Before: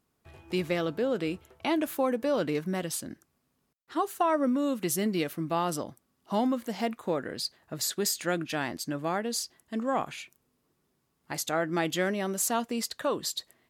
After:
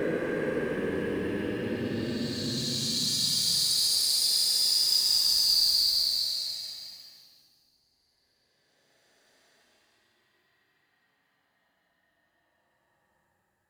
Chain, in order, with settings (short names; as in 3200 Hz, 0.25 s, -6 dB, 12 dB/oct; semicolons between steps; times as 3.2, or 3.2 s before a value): sample leveller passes 3; Paulstretch 42×, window 0.05 s, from 7.32; gain -2.5 dB